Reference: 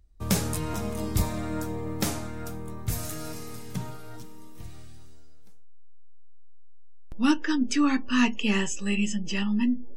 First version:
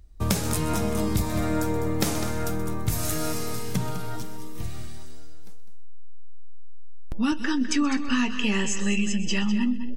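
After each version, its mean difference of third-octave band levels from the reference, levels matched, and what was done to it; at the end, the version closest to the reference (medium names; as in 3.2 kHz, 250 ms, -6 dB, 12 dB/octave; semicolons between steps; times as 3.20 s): 5.5 dB: feedback echo behind a high-pass 127 ms, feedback 38%, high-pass 2.3 kHz, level -15 dB; compression 6:1, threshold -30 dBFS, peak gain reduction 13.5 dB; delay 203 ms -11 dB; trim +9 dB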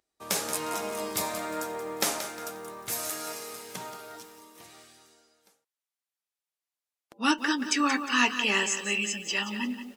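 8.5 dB: high-pass 490 Hz 12 dB/octave; level rider gain up to 4 dB; resampled via 32 kHz; bit-crushed delay 178 ms, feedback 35%, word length 8-bit, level -10 dB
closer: first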